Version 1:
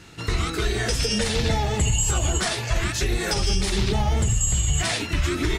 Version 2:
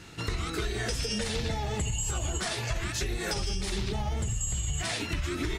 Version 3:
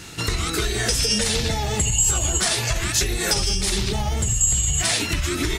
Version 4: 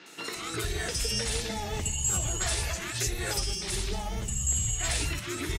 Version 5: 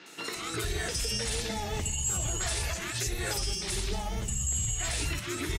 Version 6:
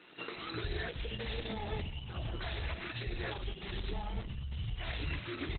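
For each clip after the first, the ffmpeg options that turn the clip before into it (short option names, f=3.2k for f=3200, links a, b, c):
-af "acompressor=threshold=-27dB:ratio=4,volume=-1.5dB"
-af "highshelf=f=4.8k:g=11,volume=7dB"
-filter_complex "[0:a]acrossover=split=220|4600[a][b][c];[c]adelay=60[d];[a]adelay=360[e];[e][b][d]amix=inputs=3:normalize=0,volume=-8dB"
-af "alimiter=limit=-21.5dB:level=0:latency=1:release=27"
-af "volume=-3.5dB" -ar 48000 -c:a libopus -b:a 8k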